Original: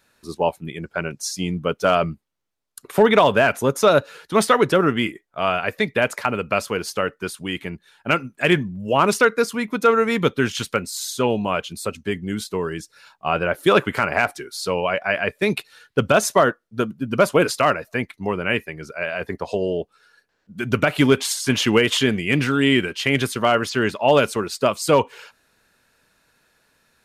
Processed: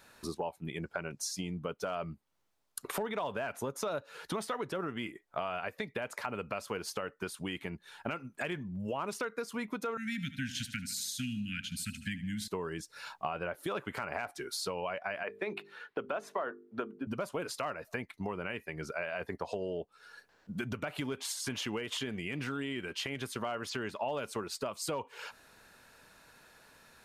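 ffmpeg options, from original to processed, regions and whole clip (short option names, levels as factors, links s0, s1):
-filter_complex "[0:a]asettb=1/sr,asplit=3[s0][s1][s2];[s0]atrim=end=9.974[s3];[s1]atrim=start=9.97:end=12.48,asetpts=PTS-STARTPTS,afade=t=in:d=0.004:c=qsin,afade=t=out:st=2.506:d=0.004:c=qsin,asuperstop=centerf=650:order=20:qfactor=0.51,aecho=1:1:76|152|228|304:0.158|0.0777|0.0381|0.0186,atrim=end_sample=110691[s4];[s2]atrim=start=12.476[s5];[s3][s4]acrossfade=d=0.004:c1=hsin:c2=qsin[s6];[s6][s5]acrossfade=d=0.004:c1=qsin:c2=hsin,asettb=1/sr,asplit=3[s7][s8][s9];[s7]atrim=end=15.234[s10];[s8]atrim=start=15.23:end=17.07,asetpts=PTS-STARTPTS,afade=t=in:d=0.004:c=qsin,afade=t=out:st=1.836:d=0.004:c=qsin,acrossover=split=230 3000:gain=0.0891 1 0.141[s11][s12][s13];[s11][s12][s13]amix=inputs=3:normalize=0,bandreject=f=50:t=h:w=6,bandreject=f=100:t=h:w=6,bandreject=f=150:t=h:w=6,bandreject=f=200:t=h:w=6,bandreject=f=250:t=h:w=6,bandreject=f=300:t=h:w=6,bandreject=f=350:t=h:w=6,bandreject=f=400:t=h:w=6,bandreject=f=450:t=h:w=6[s14];[s9]atrim=start=17.066[s15];[s10][s14]acrossfade=d=0.004:c1=hsin:c2=qsin[s16];[s16][s15]acrossfade=d=0.004:c1=qsin:c2=hsin,alimiter=limit=0.188:level=0:latency=1:release=281,acompressor=threshold=0.01:ratio=4,equalizer=f=870:w=1.3:g=4,volume=1.33"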